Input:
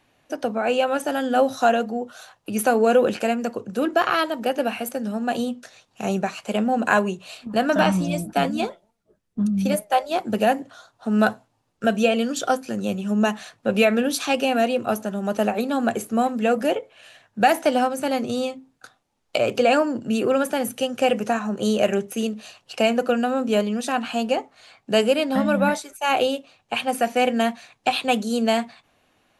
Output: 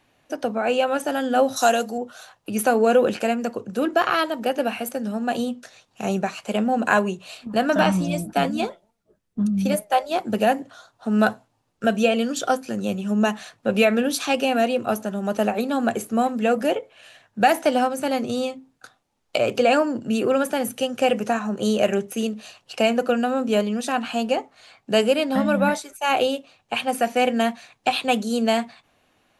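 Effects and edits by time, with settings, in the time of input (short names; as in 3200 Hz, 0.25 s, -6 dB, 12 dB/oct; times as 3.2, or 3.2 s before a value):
1.56–1.98 tone controls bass -5 dB, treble +15 dB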